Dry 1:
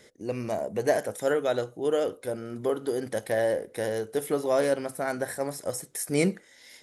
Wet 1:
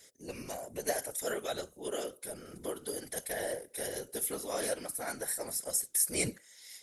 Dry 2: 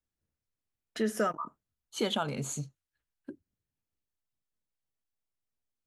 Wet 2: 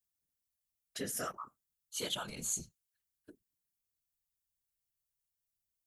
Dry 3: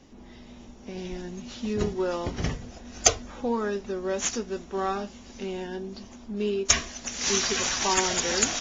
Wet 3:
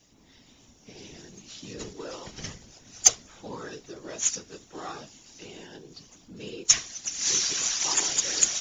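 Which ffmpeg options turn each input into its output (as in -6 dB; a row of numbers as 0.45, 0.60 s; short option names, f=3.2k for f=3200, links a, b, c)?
-af "crystalizer=i=6:c=0,afftfilt=real='hypot(re,im)*cos(2*PI*random(0))':imag='hypot(re,im)*sin(2*PI*random(1))':win_size=512:overlap=0.75,volume=-6.5dB"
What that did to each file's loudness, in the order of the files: -6.5, -5.0, +3.5 LU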